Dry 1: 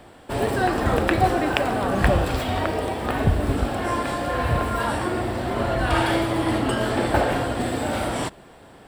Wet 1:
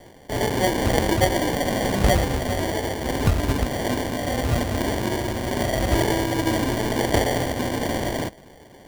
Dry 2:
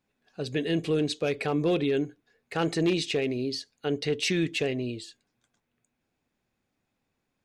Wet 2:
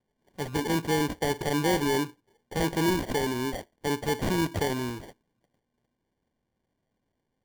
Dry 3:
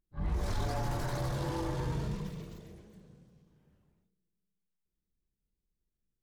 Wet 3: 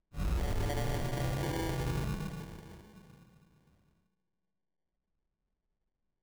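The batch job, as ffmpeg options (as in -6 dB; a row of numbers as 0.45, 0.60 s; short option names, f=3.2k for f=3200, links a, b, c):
-af "acrusher=samples=34:mix=1:aa=0.000001"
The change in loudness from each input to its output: 0.0, 0.0, 0.0 LU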